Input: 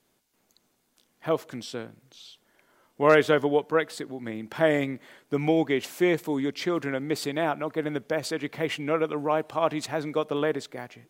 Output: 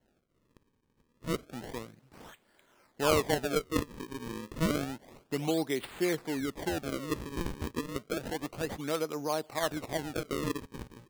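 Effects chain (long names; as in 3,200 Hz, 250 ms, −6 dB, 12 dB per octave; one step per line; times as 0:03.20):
in parallel at +1 dB: downward compressor, threshold −37 dBFS, peak gain reduction 22 dB
on the sum: sample-and-hold swept by an LFO 36×, swing 160% 0.3 Hz
level −8.5 dB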